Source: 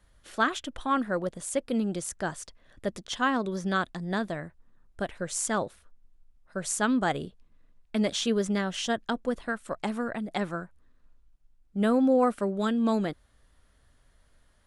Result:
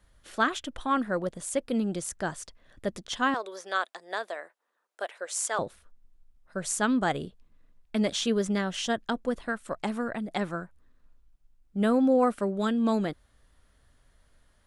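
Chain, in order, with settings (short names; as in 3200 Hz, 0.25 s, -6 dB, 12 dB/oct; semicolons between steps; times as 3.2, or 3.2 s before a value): 3.34–5.59 HPF 470 Hz 24 dB/oct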